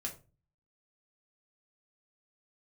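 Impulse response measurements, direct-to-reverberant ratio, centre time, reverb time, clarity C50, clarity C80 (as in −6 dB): −0.5 dB, 14 ms, 0.35 s, 11.5 dB, 17.5 dB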